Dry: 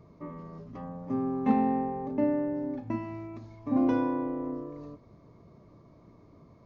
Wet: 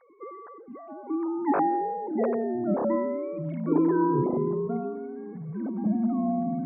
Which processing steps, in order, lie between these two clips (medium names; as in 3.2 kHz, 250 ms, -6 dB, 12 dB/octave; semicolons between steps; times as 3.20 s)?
formants replaced by sine waves; feedback echo behind a high-pass 174 ms, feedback 37%, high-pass 2.3 kHz, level -20 dB; ever faster or slower copies 593 ms, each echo -6 st, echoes 2; trim +1.5 dB